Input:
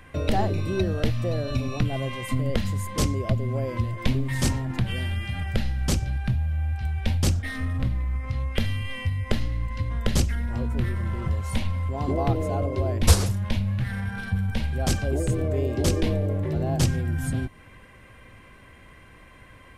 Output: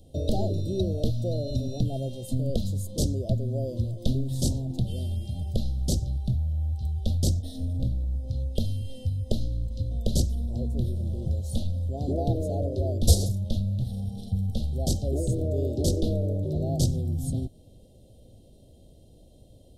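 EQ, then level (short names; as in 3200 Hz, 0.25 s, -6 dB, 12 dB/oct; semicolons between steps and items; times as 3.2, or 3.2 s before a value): elliptic band-stop 660–3700 Hz, stop band 40 dB; -1.5 dB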